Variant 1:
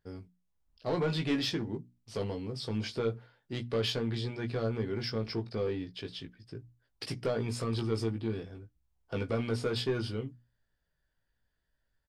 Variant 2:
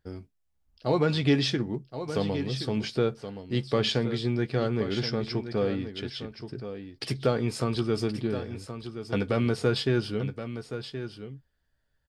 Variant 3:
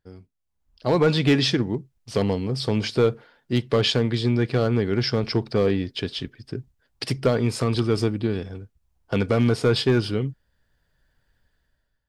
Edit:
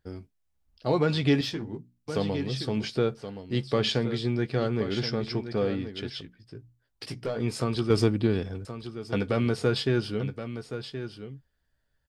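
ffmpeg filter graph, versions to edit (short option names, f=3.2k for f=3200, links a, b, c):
-filter_complex "[0:a]asplit=2[a][b];[1:a]asplit=4[c][d][e][f];[c]atrim=end=1.412[g];[a]atrim=start=1.408:end=2.082[h];[d]atrim=start=2.078:end=6.212[i];[b]atrim=start=6.208:end=7.402[j];[e]atrim=start=7.398:end=7.902[k];[2:a]atrim=start=7.898:end=8.652[l];[f]atrim=start=8.648[m];[g][h]acrossfade=d=0.004:c1=hsin:c2=hsin[n];[n][i]acrossfade=d=0.004:c1=hsin:c2=hsin[o];[o][j]acrossfade=d=0.004:c1=hsin:c2=hsin[p];[p][k]acrossfade=d=0.004:c1=hsin:c2=hsin[q];[q][l]acrossfade=d=0.004:c1=hsin:c2=hsin[r];[r][m]acrossfade=d=0.004:c1=hsin:c2=hsin"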